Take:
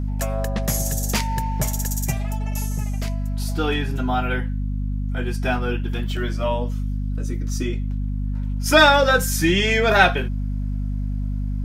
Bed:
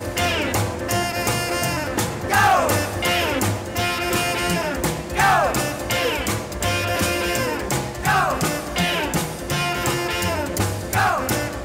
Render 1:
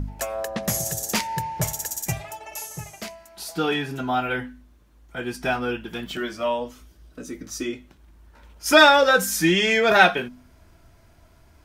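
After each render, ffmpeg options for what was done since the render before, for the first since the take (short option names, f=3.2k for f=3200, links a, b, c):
-af "bandreject=f=50:t=h:w=4,bandreject=f=100:t=h:w=4,bandreject=f=150:t=h:w=4,bandreject=f=200:t=h:w=4,bandreject=f=250:t=h:w=4"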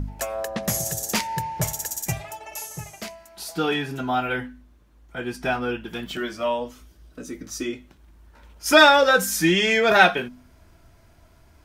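-filter_complex "[0:a]asettb=1/sr,asplit=3[a][b][c];[a]atrim=end=4.474[d];[b]atrim=start=4.47:end=5.85,asetpts=PTS-STARTPTS,afade=t=in:d=0.004:c=qsin,afade=t=out:st=1.376:d=0.004:c=qsin,highshelf=f=4k:g=-3.5[e];[c]atrim=start=5.846[f];[d][e]acrossfade=d=0.004:c1=hsin:c2=qsin[g];[g][f]acrossfade=d=0.004:c1=qsin:c2=hsin"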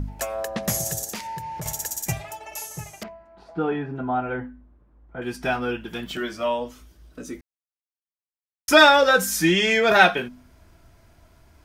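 -filter_complex "[0:a]asettb=1/sr,asplit=3[a][b][c];[a]atrim=end=1.044[d];[b]atrim=start=1.04:end=1.66,asetpts=PTS-STARTPTS,afade=t=in:d=0.004:c=qsin,afade=t=out:st=0.616:d=0.004:c=qsin,acompressor=threshold=-30dB:ratio=5:attack=3.2:release=140:knee=1:detection=peak[e];[c]atrim=start=1.656[f];[d][e]acrossfade=d=0.004:c1=hsin:c2=qsin[g];[g][f]acrossfade=d=0.004:c1=qsin:c2=hsin,asettb=1/sr,asplit=3[h][i][j];[h]atrim=end=3.034[k];[i]atrim=start=3.03:end=5.22,asetpts=PTS-STARTPTS,afade=t=in:d=0.004:c=qsin,afade=t=out:st=2.186:d=0.004:c=qsin,lowpass=1.2k[l];[j]atrim=start=5.216[m];[k][l]acrossfade=d=0.004:c1=hsin:c2=qsin[n];[n][m]acrossfade=d=0.004:c1=qsin:c2=hsin,asplit=3[o][p][q];[o]atrim=end=7.41,asetpts=PTS-STARTPTS,afade=t=out:st=7.406:d=0.004:c=hsin[r];[p]atrim=start=7.41:end=8.68,asetpts=PTS-STARTPTS,volume=0[s];[q]atrim=start=8.68,asetpts=PTS-STARTPTS,afade=t=in:d=0.004:c=hsin[t];[r][s][t]concat=n=3:v=0:a=1"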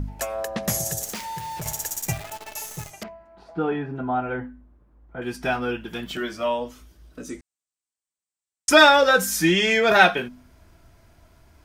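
-filter_complex "[0:a]asettb=1/sr,asplit=3[a][b][c];[a]atrim=end=1.014[d];[b]atrim=start=1.01:end=2.91,asetpts=PTS-STARTPTS,afade=t=in:d=0.004:c=qsin,afade=t=out:st=1.896:d=0.004:c=qsin,acrusher=bits=7:dc=4:mix=0:aa=0.000001[e];[c]atrim=start=2.906[f];[d][e]acrossfade=d=0.004:c1=hsin:c2=qsin[g];[g][f]acrossfade=d=0.004:c1=qsin:c2=hsin,asettb=1/sr,asplit=3[h][i][j];[h]atrim=end=7.294[k];[i]atrim=start=7.29:end=8.7,asetpts=PTS-STARTPTS,afade=t=in:d=0.004:c=qsin,afade=t=out:st=1.406:d=0.004:c=qsin,lowpass=f=8k:t=q:w=4.4[l];[j]atrim=start=8.696[m];[k][l]acrossfade=d=0.004:c1=hsin:c2=qsin[n];[n][m]acrossfade=d=0.004:c1=qsin:c2=hsin"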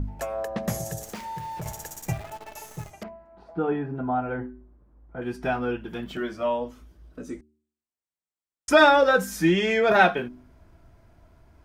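-af "highshelf=f=2.1k:g=-11.5,bandreject=f=75.6:t=h:w=4,bandreject=f=151.2:t=h:w=4,bandreject=f=226.8:t=h:w=4,bandreject=f=302.4:t=h:w=4,bandreject=f=378:t=h:w=4"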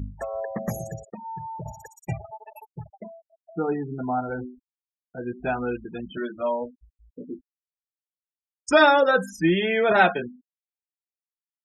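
-af "highpass=f=57:p=1,afftfilt=real='re*gte(hypot(re,im),0.0316)':imag='im*gte(hypot(re,im),0.0316)':win_size=1024:overlap=0.75"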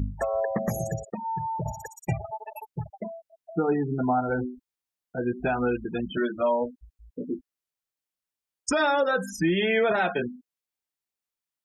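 -filter_complex "[0:a]asplit=2[a][b];[b]acompressor=threshold=-28dB:ratio=6,volume=-2.5dB[c];[a][c]amix=inputs=2:normalize=0,alimiter=limit=-15.5dB:level=0:latency=1:release=150"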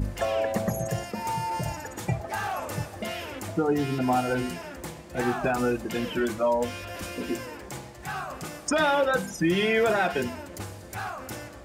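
-filter_complex "[1:a]volume=-15.5dB[a];[0:a][a]amix=inputs=2:normalize=0"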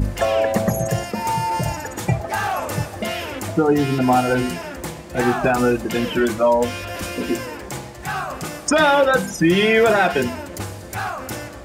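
-af "volume=8dB"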